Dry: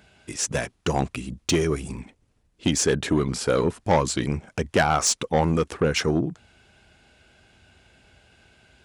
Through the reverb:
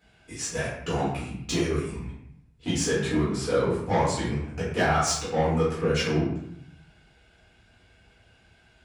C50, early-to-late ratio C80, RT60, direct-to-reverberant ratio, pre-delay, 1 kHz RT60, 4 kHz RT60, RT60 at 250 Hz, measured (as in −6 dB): 2.0 dB, 5.0 dB, 0.70 s, −10.0 dB, 4 ms, 0.70 s, 0.55 s, 0.95 s